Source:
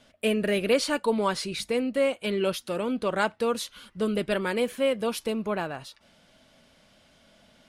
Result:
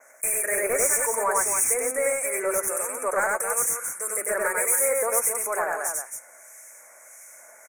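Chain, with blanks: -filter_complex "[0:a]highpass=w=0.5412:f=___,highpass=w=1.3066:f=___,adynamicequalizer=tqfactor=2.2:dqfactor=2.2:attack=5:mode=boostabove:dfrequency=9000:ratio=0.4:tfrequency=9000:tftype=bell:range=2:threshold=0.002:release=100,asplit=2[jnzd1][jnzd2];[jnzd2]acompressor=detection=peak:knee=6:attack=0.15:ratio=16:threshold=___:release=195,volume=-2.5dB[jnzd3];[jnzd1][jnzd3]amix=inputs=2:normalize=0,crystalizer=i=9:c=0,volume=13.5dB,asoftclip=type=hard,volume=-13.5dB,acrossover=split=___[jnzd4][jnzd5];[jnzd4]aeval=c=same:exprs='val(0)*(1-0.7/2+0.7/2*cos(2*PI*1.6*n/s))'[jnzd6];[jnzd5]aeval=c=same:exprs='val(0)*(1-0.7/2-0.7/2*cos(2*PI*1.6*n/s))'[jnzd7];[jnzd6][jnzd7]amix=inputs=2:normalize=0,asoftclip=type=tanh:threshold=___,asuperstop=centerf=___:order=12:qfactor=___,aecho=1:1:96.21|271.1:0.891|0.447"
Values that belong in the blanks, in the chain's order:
460, 460, -35dB, 1900, -16.5dB, 3700, 0.96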